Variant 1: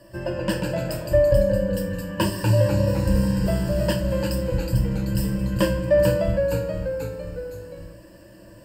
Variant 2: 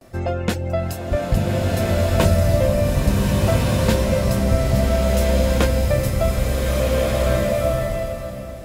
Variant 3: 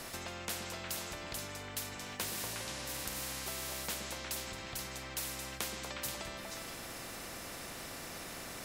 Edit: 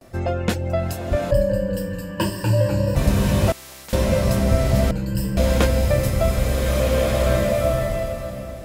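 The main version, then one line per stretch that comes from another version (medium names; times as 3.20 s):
2
1.31–2.96 s: from 1
3.52–3.93 s: from 3
4.91–5.37 s: from 1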